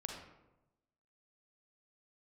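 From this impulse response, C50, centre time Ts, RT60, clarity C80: 2.5 dB, 44 ms, 0.95 s, 5.5 dB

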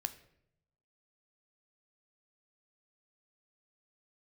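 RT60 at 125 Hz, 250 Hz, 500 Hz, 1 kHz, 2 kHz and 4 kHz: 1.2, 0.95, 0.90, 0.65, 0.65, 0.50 seconds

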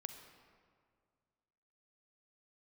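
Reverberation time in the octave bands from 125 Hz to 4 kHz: 2.5, 2.2, 2.1, 2.0, 1.6, 1.2 seconds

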